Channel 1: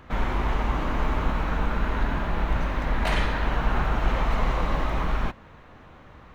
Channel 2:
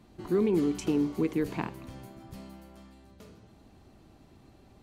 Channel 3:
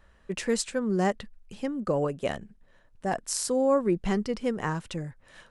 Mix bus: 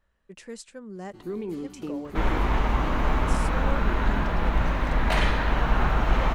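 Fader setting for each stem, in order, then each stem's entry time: +1.5, −7.0, −13.0 decibels; 2.05, 0.95, 0.00 seconds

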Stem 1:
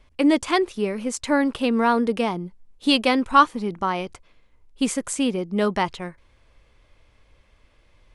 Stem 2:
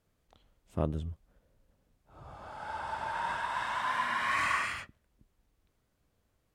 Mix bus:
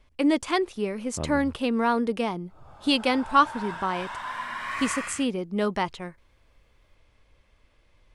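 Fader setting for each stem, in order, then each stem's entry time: −4.0, −2.0 decibels; 0.00, 0.40 seconds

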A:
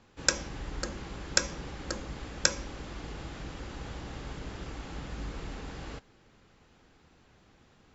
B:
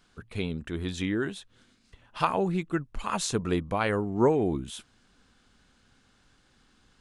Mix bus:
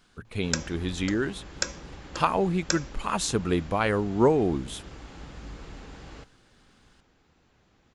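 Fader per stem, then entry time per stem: −3.0, +2.0 decibels; 0.25, 0.00 seconds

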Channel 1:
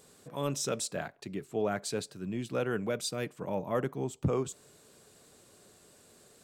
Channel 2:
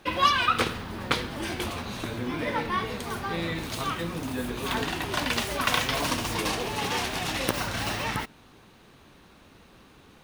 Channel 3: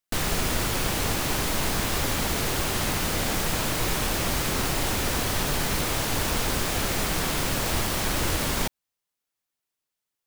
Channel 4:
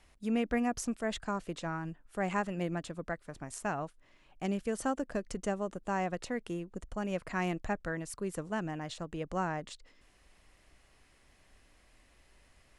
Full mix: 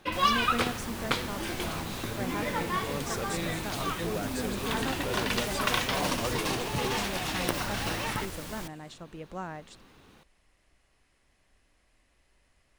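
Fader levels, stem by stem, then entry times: −4.5, −3.0, −15.0, −4.5 decibels; 2.50, 0.00, 0.00, 0.00 seconds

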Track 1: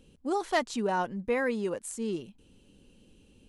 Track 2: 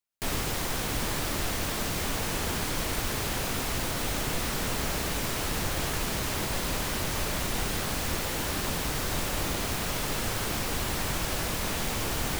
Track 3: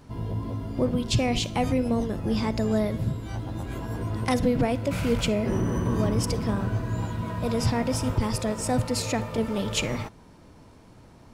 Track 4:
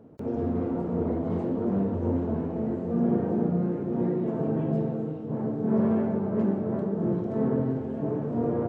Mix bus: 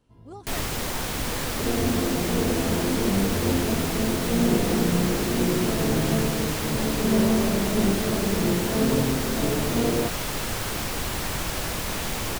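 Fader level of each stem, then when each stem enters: −13.0, +1.5, −18.5, +2.5 decibels; 0.00, 0.25, 0.00, 1.40 seconds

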